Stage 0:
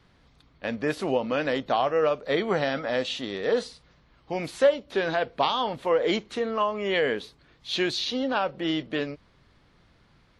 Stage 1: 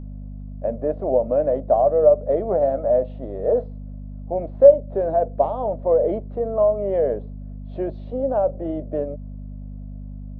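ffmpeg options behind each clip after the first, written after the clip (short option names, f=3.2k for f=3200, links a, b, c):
-af "lowpass=f=620:t=q:w=6.8,aeval=exprs='val(0)+0.0398*(sin(2*PI*50*n/s)+sin(2*PI*2*50*n/s)/2+sin(2*PI*3*50*n/s)/3+sin(2*PI*4*50*n/s)/4+sin(2*PI*5*50*n/s)/5)':c=same,equalizer=f=77:t=o:w=0.77:g=-6.5,volume=-3dB"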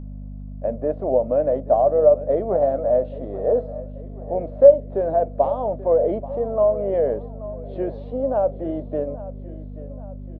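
-af "aecho=1:1:832|1664|2496|3328:0.15|0.0748|0.0374|0.0187"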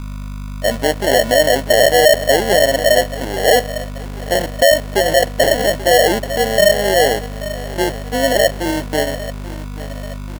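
-af "apsyclip=13dB,acrusher=samples=36:mix=1:aa=0.000001,volume=-5.5dB"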